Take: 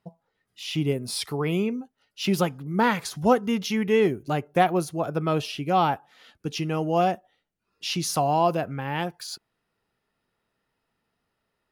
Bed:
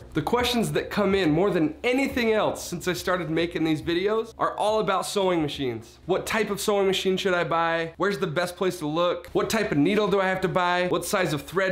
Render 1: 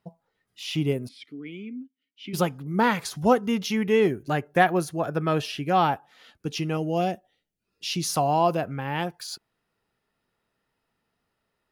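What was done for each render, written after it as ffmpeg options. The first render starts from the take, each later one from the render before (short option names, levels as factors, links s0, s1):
-filter_complex "[0:a]asplit=3[s0][s1][s2];[s0]afade=t=out:st=1.07:d=0.02[s3];[s1]asplit=3[s4][s5][s6];[s4]bandpass=f=270:t=q:w=8,volume=1[s7];[s5]bandpass=f=2290:t=q:w=8,volume=0.501[s8];[s6]bandpass=f=3010:t=q:w=8,volume=0.355[s9];[s7][s8][s9]amix=inputs=3:normalize=0,afade=t=in:st=1.07:d=0.02,afade=t=out:st=2.33:d=0.02[s10];[s2]afade=t=in:st=2.33:d=0.02[s11];[s3][s10][s11]amix=inputs=3:normalize=0,asettb=1/sr,asplit=3[s12][s13][s14];[s12]atrim=end=4.104[s15];[s13]atrim=start=4.1:end=5.87,asetpts=PTS-STARTPTS,afade=t=in:d=0.004:c=qsin,afade=t=out:st=1.766:d=0.004:c=qsin,equalizer=f=1700:w=4.8:g=9[s16];[s14]atrim=start=5.866[s17];[s15][s16]acrossfade=d=0.004:c1=hsin:c2=qsin[s18];[s18][s17]acrossfade=d=0.004:c1=qsin:c2=hsin,asettb=1/sr,asplit=3[s19][s20][s21];[s19]atrim=end=6.774[s22];[s20]atrim=start=6.77:end=8.03,asetpts=PTS-STARTPTS,afade=t=in:d=0.004:c=qsin,afade=t=out:st=1.256:d=0.004:c=qsin,equalizer=f=1100:w=1.2:g=-10[s23];[s21]atrim=start=8.026[s24];[s22][s23]acrossfade=d=0.004:c1=hsin:c2=qsin[s25];[s25][s24]acrossfade=d=0.004:c1=qsin:c2=hsin"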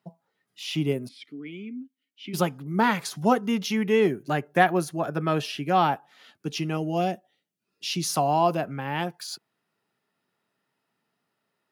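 -af "highpass=f=130:w=0.5412,highpass=f=130:w=1.3066,bandreject=f=490:w=12"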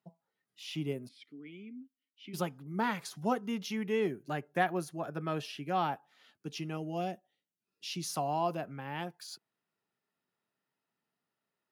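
-af "volume=0.316"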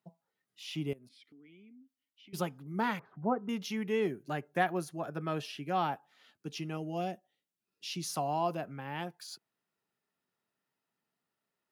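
-filter_complex "[0:a]asettb=1/sr,asplit=3[s0][s1][s2];[s0]atrim=end=0.934[s3];[s1]atrim=start=0.93:end=2.33,asetpts=PTS-STARTPTS,afade=t=in:d=0.004:c=qsin,afade=t=out:st=1.396:d=0.004:c=qsin,acompressor=threshold=0.00158:ratio=4:attack=3.2:release=140:knee=1:detection=peak[s4];[s2]atrim=start=2.326[s5];[s3][s4]acrossfade=d=0.004:c1=hsin:c2=qsin[s6];[s6][s5]acrossfade=d=0.004:c1=qsin:c2=hsin,asettb=1/sr,asplit=3[s7][s8][s9];[s7]atrim=end=2.994[s10];[s8]atrim=start=2.99:end=3.49,asetpts=PTS-STARTPTS,afade=t=in:d=0.004:c=qsin,afade=t=out:st=0.496:d=0.004:c=qsin,lowpass=f=1400:w=0.5412,lowpass=f=1400:w=1.3066[s11];[s9]atrim=start=3.486[s12];[s10][s11]acrossfade=d=0.004:c1=hsin:c2=qsin[s13];[s13][s12]acrossfade=d=0.004:c1=qsin:c2=hsin"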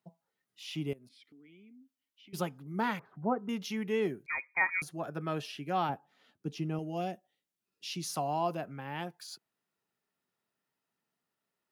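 -filter_complex "[0:a]asettb=1/sr,asplit=3[s0][s1][s2];[s0]atrim=end=4.264[s3];[s1]atrim=start=4.26:end=4.82,asetpts=PTS-STARTPTS,afade=t=in:d=0.004:c=qsin,afade=t=out:st=0.556:d=0.004:c=qsin,lowpass=f=2200:t=q:w=0.5098,lowpass=f=2200:t=q:w=0.6013,lowpass=f=2200:t=q:w=0.9,lowpass=f=2200:t=q:w=2.563,afreqshift=-2600[s4];[s2]atrim=start=4.816[s5];[s3][s4]acrossfade=d=0.004:c1=hsin:c2=qsin[s6];[s6][s5]acrossfade=d=0.004:c1=qsin:c2=hsin,asettb=1/sr,asplit=3[s7][s8][s9];[s7]atrim=end=5.894[s10];[s8]atrim=start=5.89:end=6.79,asetpts=PTS-STARTPTS,afade=t=in:d=0.004:c=qsin,afade=t=out:st=0.896:d=0.004:c=qsin,tiltshelf=f=750:g=5.5[s11];[s9]atrim=start=6.786[s12];[s10][s11]acrossfade=d=0.004:c1=hsin:c2=qsin[s13];[s13][s12]acrossfade=d=0.004:c1=qsin:c2=hsin"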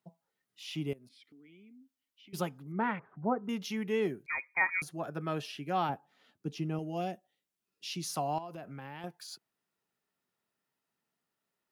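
-filter_complex "[0:a]asettb=1/sr,asplit=3[s0][s1][s2];[s0]atrim=end=2.724[s3];[s1]atrim=start=2.72:end=3.44,asetpts=PTS-STARTPTS,afade=t=in:d=0.004:c=qsin,afade=t=out:st=0.716:d=0.004:c=qsin,lowpass=f=2500:w=0.5412,lowpass=f=2500:w=1.3066[s4];[s2]atrim=start=3.436[s5];[s3][s4]acrossfade=d=0.004:c1=hsin:c2=qsin[s6];[s6][s5]acrossfade=d=0.004:c1=qsin:c2=hsin,asettb=1/sr,asplit=3[s7][s8][s9];[s7]atrim=end=8.384[s10];[s8]atrim=start=8.38:end=9.04,asetpts=PTS-STARTPTS,afade=t=in:d=0.004:c=qsin,afade=t=out:st=0.656:d=0.004:c=qsin,acompressor=threshold=0.0112:ratio=10:attack=3.2:release=140:knee=1:detection=peak[s11];[s9]atrim=start=9.036[s12];[s10][s11]acrossfade=d=0.004:c1=hsin:c2=qsin[s13];[s13][s12]acrossfade=d=0.004:c1=qsin:c2=hsin"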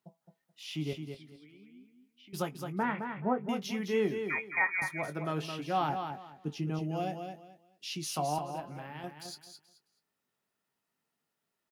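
-filter_complex "[0:a]asplit=2[s0][s1];[s1]adelay=20,volume=0.316[s2];[s0][s2]amix=inputs=2:normalize=0,aecho=1:1:215|430|645:0.447|0.103|0.0236"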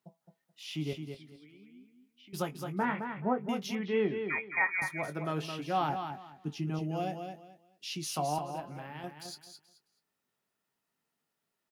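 -filter_complex "[0:a]asettb=1/sr,asplit=3[s0][s1][s2];[s0]atrim=end=2.474[s3];[s1]atrim=start=2.47:end=3,asetpts=PTS-STARTPTS,afade=t=in:d=0.004:c=qsin,afade=t=out:st=0.526:d=0.004:c=qsin,asplit=2[s4][s5];[s5]adelay=20,volume=0.2[s6];[s4][s6]amix=inputs=2:normalize=0,atrim=end_sample=23373[s7];[s2]atrim=start=2.996[s8];[s3][s7]acrossfade=d=0.004:c1=hsin:c2=qsin[s9];[s9][s8]acrossfade=d=0.004:c1=qsin:c2=hsin,asettb=1/sr,asplit=3[s10][s11][s12];[s10]atrim=end=3.754[s13];[s11]atrim=start=3.75:end=4.62,asetpts=PTS-STARTPTS,afade=t=in:d=0.004:c=qsin,afade=t=out:st=0.866:d=0.004:c=qsin,lowpass=f=3700:w=0.5412,lowpass=f=3700:w=1.3066[s14];[s12]atrim=start=4.616[s15];[s13][s14]acrossfade=d=0.004:c1=hsin:c2=qsin[s16];[s16][s15]acrossfade=d=0.004:c1=qsin:c2=hsin,asettb=1/sr,asplit=3[s17][s18][s19];[s17]atrim=end=5.964[s20];[s18]atrim=start=5.96:end=6.74,asetpts=PTS-STARTPTS,afade=t=in:d=0.004:c=qsin,afade=t=out:st=0.776:d=0.004:c=qsin,equalizer=f=500:t=o:w=0.25:g=-14[s21];[s19]atrim=start=6.736[s22];[s20][s21]acrossfade=d=0.004:c1=hsin:c2=qsin[s23];[s23][s22]acrossfade=d=0.004:c1=qsin:c2=hsin"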